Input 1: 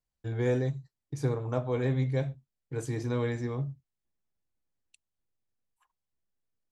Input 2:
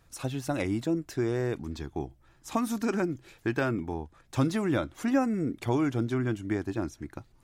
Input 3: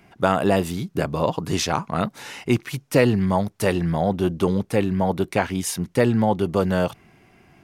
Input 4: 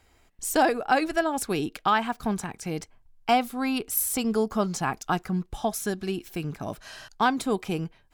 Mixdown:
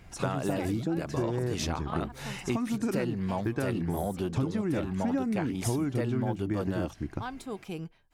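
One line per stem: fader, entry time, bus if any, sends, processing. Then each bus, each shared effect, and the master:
-5.0 dB, 0.00 s, no send, negative-ratio compressor -38 dBFS, ratio -1
+1.5 dB, 0.00 s, no send, LPF 8900 Hz; low shelf 400 Hz +9 dB
-4.0 dB, 0.00 s, no send, dry
-6.5 dB, 0.00 s, no send, auto duck -9 dB, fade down 1.15 s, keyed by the second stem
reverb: off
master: compressor 4:1, threshold -28 dBFS, peak gain reduction 14 dB

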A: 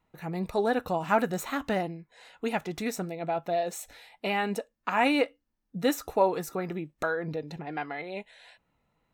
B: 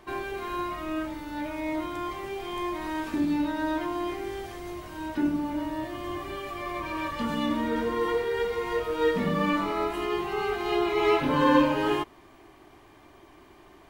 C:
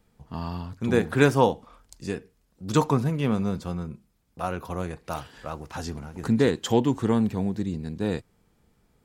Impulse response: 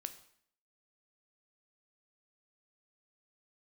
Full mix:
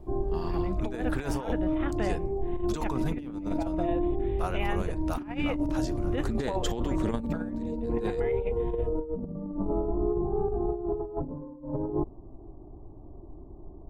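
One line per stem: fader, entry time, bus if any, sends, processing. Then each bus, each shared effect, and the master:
-7.0 dB, 0.30 s, no send, Chebyshev low-pass 3600 Hz, order 8
-5.5 dB, 0.00 s, no send, inverse Chebyshev low-pass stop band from 2200 Hz, stop band 50 dB; tilt -4.5 dB/oct
-6.0 dB, 0.00 s, no send, low shelf 360 Hz -4 dB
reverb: off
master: negative-ratio compressor -28 dBFS, ratio -0.5

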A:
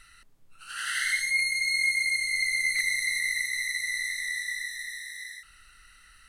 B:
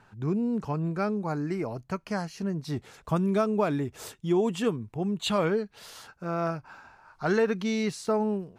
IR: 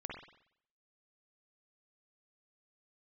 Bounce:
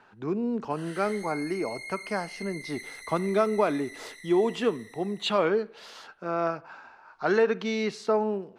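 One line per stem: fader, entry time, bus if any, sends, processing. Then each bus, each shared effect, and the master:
-16.0 dB, 0.00 s, no send, gate -41 dBFS, range -16 dB
+1.5 dB, 0.00 s, send -16.5 dB, three-band isolator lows -23 dB, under 260 Hz, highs -16 dB, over 5700 Hz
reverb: on, RT60 0.65 s, pre-delay 46 ms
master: low shelf 180 Hz +7.5 dB

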